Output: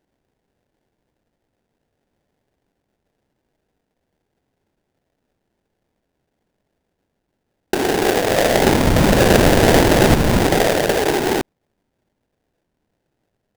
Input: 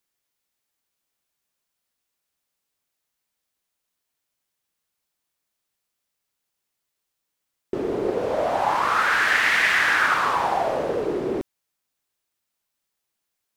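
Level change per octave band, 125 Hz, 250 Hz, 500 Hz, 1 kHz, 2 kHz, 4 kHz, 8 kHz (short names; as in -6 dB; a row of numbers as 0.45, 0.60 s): +22.5, +15.0, +10.0, +2.0, -1.5, +8.0, +14.0 dB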